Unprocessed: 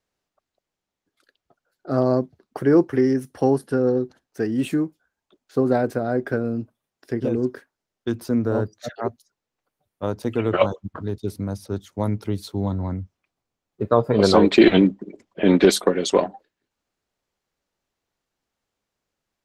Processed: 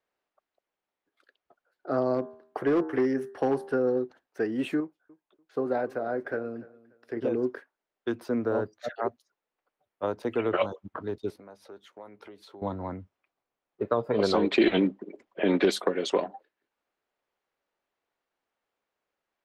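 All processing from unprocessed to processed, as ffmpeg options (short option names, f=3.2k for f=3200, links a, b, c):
-filter_complex "[0:a]asettb=1/sr,asplit=3[a][b][c];[a]atrim=end=2.144[d];[b]atrim=start=2.14:end=3.73,asetpts=PTS-STARTPTS,afade=t=in:d=0.004:c=qsin,afade=t=out:st=1.586:d=0.004:c=qsin,bandreject=f=79.09:t=h:w=4,bandreject=f=158.18:t=h:w=4,bandreject=f=237.27:t=h:w=4,bandreject=f=316.36:t=h:w=4,bandreject=f=395.45:t=h:w=4,bandreject=f=474.54:t=h:w=4,bandreject=f=553.63:t=h:w=4,bandreject=f=632.72:t=h:w=4,bandreject=f=711.81:t=h:w=4,bandreject=f=790.9:t=h:w=4,bandreject=f=869.99:t=h:w=4,bandreject=f=949.08:t=h:w=4,bandreject=f=1.02817k:t=h:w=4,bandreject=f=1.10726k:t=h:w=4,bandreject=f=1.18635k:t=h:w=4,bandreject=f=1.26544k:t=h:w=4,bandreject=f=1.34453k:t=h:w=4,bandreject=f=1.42362k:t=h:w=4,bandreject=f=1.50271k:t=h:w=4,bandreject=f=1.5818k:t=h:w=4,bandreject=f=1.66089k:t=h:w=4,bandreject=f=1.73998k:t=h:w=4,bandreject=f=1.81907k:t=h:w=4,bandreject=f=1.89816k:t=h:w=4,asoftclip=type=hard:threshold=-12.5dB[e];[c]atrim=start=3.726[f];[d][e]acrossfade=d=0.004:c1=hsin:c2=qsin[g];[g][f]acrossfade=d=0.004:c1=qsin:c2=hsin,asettb=1/sr,asplit=3[h][i][j];[h]atrim=end=4.804[k];[i]atrim=start=4.8:end=7.17,asetpts=PTS-STARTPTS,afade=t=in:d=0.004:c=qsin,afade=t=out:st=2.366:d=0.004:c=qsin,flanger=delay=0.7:depth=6.3:regen=79:speed=1.8:shape=sinusoidal,aecho=1:1:292|584:0.0891|0.0223,atrim=end_sample=104517[l];[j]atrim=start=7.166[m];[k][l]acrossfade=d=0.004:c1=hsin:c2=qsin[n];[n][m]acrossfade=d=0.004:c1=qsin:c2=hsin,asettb=1/sr,asplit=3[o][p][q];[o]atrim=end=11.304[r];[p]atrim=start=11.3:end=12.62,asetpts=PTS-STARTPTS,afade=t=in:d=0.004:c=qsin,afade=t=out:st=1.316:d=0.004:c=qsin,bass=f=250:g=-11,treble=f=4k:g=-4,acompressor=threshold=-41dB:ratio=4:attack=3.2:release=140:knee=1:detection=peak,asplit=2[s][t];[t]adelay=15,volume=-11dB[u];[s][u]amix=inputs=2:normalize=0,atrim=end_sample=58212[v];[q]atrim=start=12.616[w];[r][v]acrossfade=d=0.004:c1=hsin:c2=qsin[x];[x][w]acrossfade=d=0.004:c1=qsin:c2=hsin,bass=f=250:g=-15,treble=f=4k:g=-14,acrossover=split=280|3000[y][z][aa];[z]acompressor=threshold=-24dB:ratio=6[ab];[y][ab][aa]amix=inputs=3:normalize=0"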